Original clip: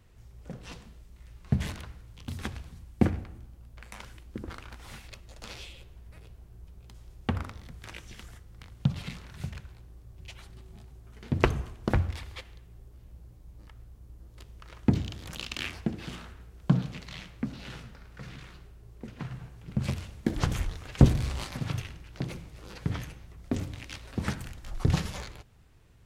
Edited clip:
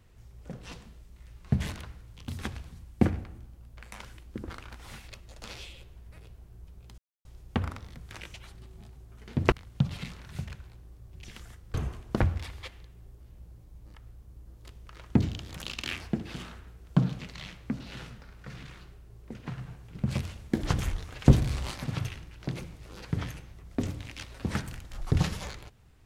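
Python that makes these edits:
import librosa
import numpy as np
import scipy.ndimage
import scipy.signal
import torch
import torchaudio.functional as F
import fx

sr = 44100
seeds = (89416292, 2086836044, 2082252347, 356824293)

y = fx.edit(x, sr, fx.insert_silence(at_s=6.98, length_s=0.27),
    fx.swap(start_s=8.07, length_s=0.5, other_s=10.29, other_length_s=1.18), tone=tone)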